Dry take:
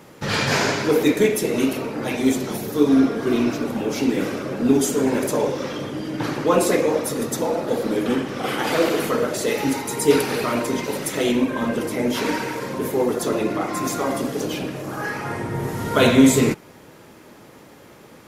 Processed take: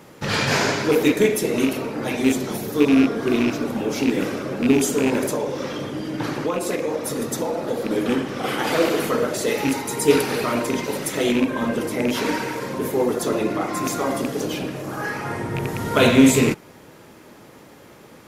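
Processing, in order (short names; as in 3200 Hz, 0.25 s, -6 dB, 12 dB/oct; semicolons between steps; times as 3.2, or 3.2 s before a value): rattling part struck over -22 dBFS, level -16 dBFS; 5.26–7.91 compressor 10:1, threshold -20 dBFS, peak gain reduction 9 dB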